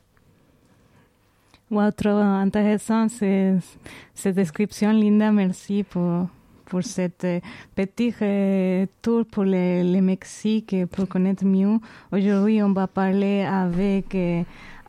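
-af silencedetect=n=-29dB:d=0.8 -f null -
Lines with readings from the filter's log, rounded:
silence_start: 0.00
silence_end: 1.71 | silence_duration: 1.71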